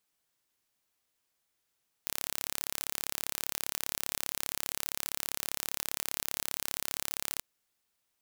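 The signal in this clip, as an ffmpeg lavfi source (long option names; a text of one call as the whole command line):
ffmpeg -f lavfi -i "aevalsrc='0.501*eq(mod(n,1256),0)':duration=5.33:sample_rate=44100" out.wav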